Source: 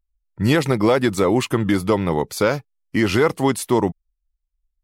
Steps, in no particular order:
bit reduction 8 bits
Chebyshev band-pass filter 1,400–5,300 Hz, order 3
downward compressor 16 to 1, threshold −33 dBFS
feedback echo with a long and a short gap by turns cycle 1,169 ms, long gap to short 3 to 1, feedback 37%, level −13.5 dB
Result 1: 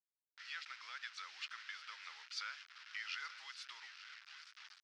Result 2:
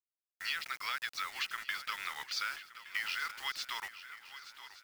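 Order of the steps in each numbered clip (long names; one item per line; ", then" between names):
downward compressor, then feedback echo with a long and a short gap by turns, then bit reduction, then Chebyshev band-pass filter
Chebyshev band-pass filter, then downward compressor, then bit reduction, then feedback echo with a long and a short gap by turns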